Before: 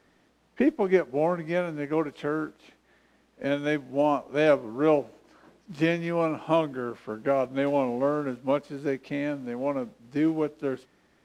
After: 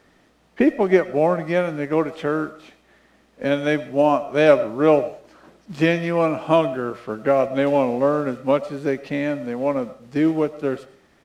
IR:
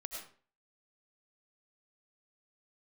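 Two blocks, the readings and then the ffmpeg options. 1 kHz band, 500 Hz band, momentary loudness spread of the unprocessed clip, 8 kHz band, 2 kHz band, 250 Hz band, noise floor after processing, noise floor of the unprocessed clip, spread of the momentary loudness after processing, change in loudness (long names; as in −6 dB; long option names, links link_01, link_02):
+6.5 dB, +7.0 dB, 9 LU, can't be measured, +6.5 dB, +5.5 dB, −58 dBFS, −65 dBFS, 10 LU, +6.5 dB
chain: -filter_complex "[0:a]asplit=2[link_01][link_02];[link_02]aecho=1:1:1.6:0.57[link_03];[1:a]atrim=start_sample=2205[link_04];[link_03][link_04]afir=irnorm=-1:irlink=0,volume=-10.5dB[link_05];[link_01][link_05]amix=inputs=2:normalize=0,volume=5dB"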